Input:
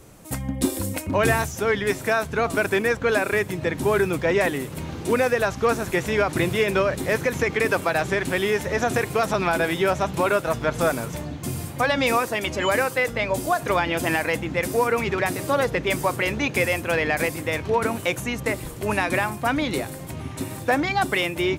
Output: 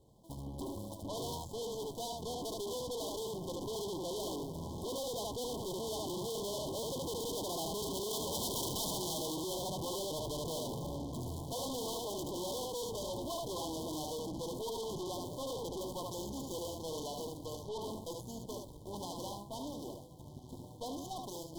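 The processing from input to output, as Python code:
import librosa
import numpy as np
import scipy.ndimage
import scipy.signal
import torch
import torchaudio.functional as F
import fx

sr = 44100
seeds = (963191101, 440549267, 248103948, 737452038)

p1 = scipy.ndimage.median_filter(x, 15, mode='constant')
p2 = fx.doppler_pass(p1, sr, speed_mps=16, closest_m=5.1, pass_at_s=8.54)
p3 = 10.0 ** (-27.5 / 20.0) * (np.abs((p2 / 10.0 ** (-27.5 / 20.0) + 3.0) % 4.0 - 2.0) - 1.0)
p4 = p3 + 10.0 ** (-5.0 / 20.0) * np.pad(p3, (int(74 * sr / 1000.0), 0))[:len(p3)]
p5 = fx.rider(p4, sr, range_db=5, speed_s=2.0)
p6 = p4 + (p5 * librosa.db_to_amplitude(1.0))
p7 = fx.dynamic_eq(p6, sr, hz=360.0, q=1.5, threshold_db=-46.0, ratio=4.0, max_db=6)
p8 = fx.tube_stage(p7, sr, drive_db=46.0, bias=0.8)
p9 = fx.brickwall_bandstop(p8, sr, low_hz=1100.0, high_hz=3000.0)
p10 = fx.high_shelf(p9, sr, hz=2400.0, db=10.0)
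y = p10 * librosa.db_to_amplitude(7.5)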